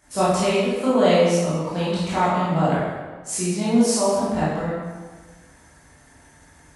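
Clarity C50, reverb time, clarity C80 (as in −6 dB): −2.5 dB, 1.4 s, 1.5 dB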